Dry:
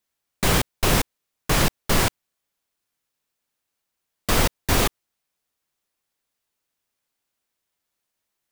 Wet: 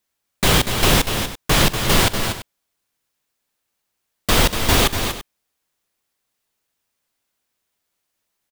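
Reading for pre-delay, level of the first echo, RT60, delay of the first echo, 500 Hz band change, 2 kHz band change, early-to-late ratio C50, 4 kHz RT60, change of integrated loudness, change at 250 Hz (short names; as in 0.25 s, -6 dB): none, -18.0 dB, none, 45 ms, +4.5 dB, +5.5 dB, none, none, +4.5 dB, +4.5 dB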